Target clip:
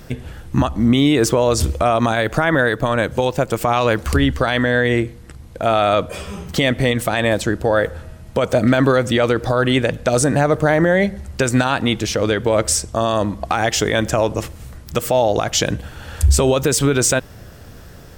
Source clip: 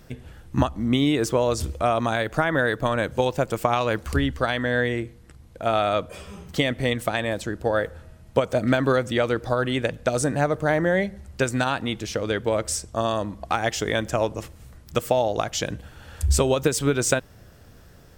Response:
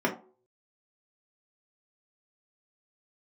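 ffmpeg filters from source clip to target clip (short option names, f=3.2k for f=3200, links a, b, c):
-filter_complex "[0:a]asettb=1/sr,asplit=3[a][b][c];[a]atrim=end=2.684[d];[b]atrim=start=2.68:end=3.61,asetpts=PTS-STARTPTS,afade=t=in:d=0.004:c=qsin,afade=t=out:st=0.926:d=0.004:c=qsin,acompressor=threshold=-30dB:ratio=1.5[e];[c]atrim=start=3.606[f];[d][e]acrossfade=d=0.004:c1=hsin:c2=qsin[g];[g][f]acrossfade=d=0.004:c1=qsin:c2=hsin,alimiter=level_in=15dB:limit=-1dB:release=50:level=0:latency=1,volume=-5dB"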